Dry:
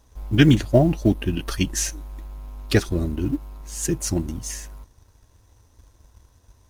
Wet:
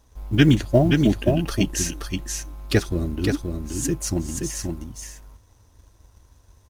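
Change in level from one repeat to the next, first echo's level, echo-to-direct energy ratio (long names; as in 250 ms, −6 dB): repeats not evenly spaced, −4.5 dB, −4.5 dB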